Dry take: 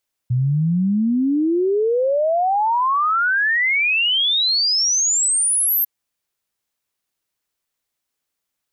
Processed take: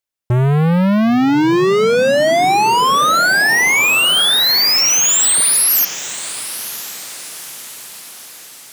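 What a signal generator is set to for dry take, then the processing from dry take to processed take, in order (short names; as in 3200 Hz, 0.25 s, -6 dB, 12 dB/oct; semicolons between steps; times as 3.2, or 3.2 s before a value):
log sweep 120 Hz -> 13000 Hz 5.55 s -15 dBFS
vocal rider within 4 dB 2 s; sample leveller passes 5; diffused feedback echo 0.978 s, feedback 52%, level -13.5 dB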